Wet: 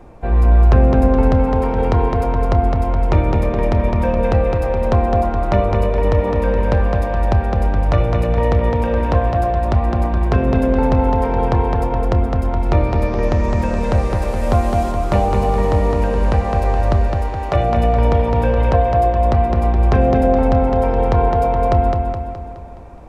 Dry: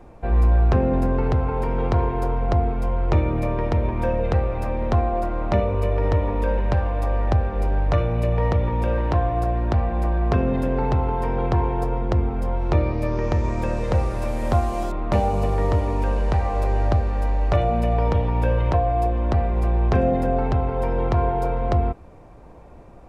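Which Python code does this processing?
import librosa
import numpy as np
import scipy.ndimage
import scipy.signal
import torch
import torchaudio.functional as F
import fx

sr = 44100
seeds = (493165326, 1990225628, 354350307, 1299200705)

p1 = fx.highpass(x, sr, hz=fx.line((17.07, 620.0), (17.54, 170.0)), slope=12, at=(17.07, 17.54), fade=0.02)
p2 = p1 + fx.echo_feedback(p1, sr, ms=210, feedback_pct=51, wet_db=-4.5, dry=0)
y = p2 * librosa.db_to_amplitude(4.0)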